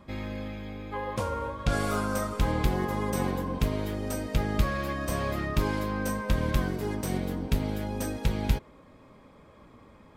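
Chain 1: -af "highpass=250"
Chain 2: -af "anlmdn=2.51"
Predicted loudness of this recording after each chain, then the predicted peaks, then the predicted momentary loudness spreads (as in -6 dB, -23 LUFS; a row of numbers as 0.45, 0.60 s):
-33.5, -30.5 LUFS; -16.0, -10.0 dBFS; 6, 6 LU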